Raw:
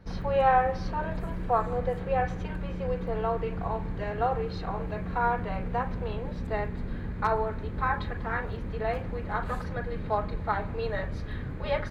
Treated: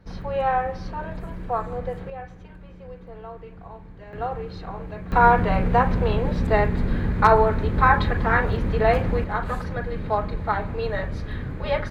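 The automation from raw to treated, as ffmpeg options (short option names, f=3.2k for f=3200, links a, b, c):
-af "asetnsamples=n=441:p=0,asendcmd='2.1 volume volume -10dB;4.13 volume volume -1.5dB;5.12 volume volume 11dB;9.24 volume volume 4.5dB',volume=-0.5dB"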